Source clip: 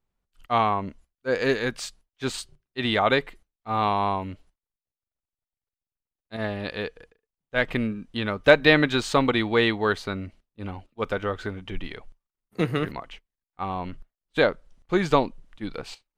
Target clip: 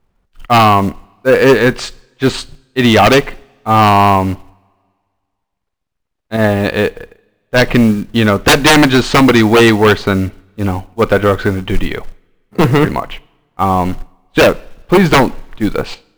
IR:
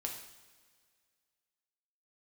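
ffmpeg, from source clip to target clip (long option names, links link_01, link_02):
-filter_complex "[0:a]aemphasis=mode=reproduction:type=75fm,acrusher=bits=6:mode=log:mix=0:aa=0.000001,aeval=exprs='0.794*sin(PI/2*5.62*val(0)/0.794)':channel_layout=same,asplit=2[link_01][link_02];[1:a]atrim=start_sample=2205,asetrate=48510,aresample=44100,adelay=37[link_03];[link_02][link_03]afir=irnorm=-1:irlink=0,volume=-20dB[link_04];[link_01][link_04]amix=inputs=2:normalize=0,volume=-1dB"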